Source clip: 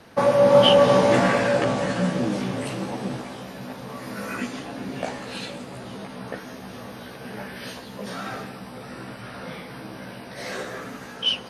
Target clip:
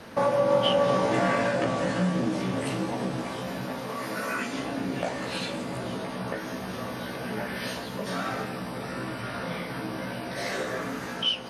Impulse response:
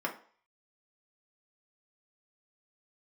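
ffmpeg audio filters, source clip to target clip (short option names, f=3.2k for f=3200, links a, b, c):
-filter_complex "[0:a]asettb=1/sr,asplit=3[a][b][c];[a]atrim=end=3.794[d];[b]atrim=start=3.79:end=4.53,asetpts=PTS-STARTPTS,afade=t=in:d=0.004:c=qsin,afade=t=out:st=0.736:d=0.004:c=qsin,lowshelf=f=220:g=-8.5[e];[c]atrim=start=4.526[f];[d][e]acrossfade=d=0.004:c1=hsin:c2=qsin[g];[g][f]acrossfade=d=0.004:c1=qsin:c2=hsin,acompressor=threshold=-34dB:ratio=2,asplit=2[h][i];[1:a]atrim=start_sample=2205,adelay=19[j];[i][j]afir=irnorm=-1:irlink=0,volume=-11dB[k];[h][k]amix=inputs=2:normalize=0,volume=3.5dB"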